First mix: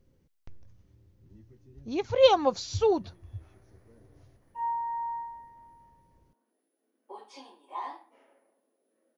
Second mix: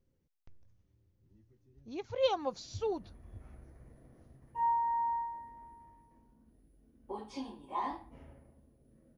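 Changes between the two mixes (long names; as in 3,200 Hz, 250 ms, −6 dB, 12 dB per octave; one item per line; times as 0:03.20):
speech −10.5 dB
background: remove Bessel high-pass filter 510 Hz, order 6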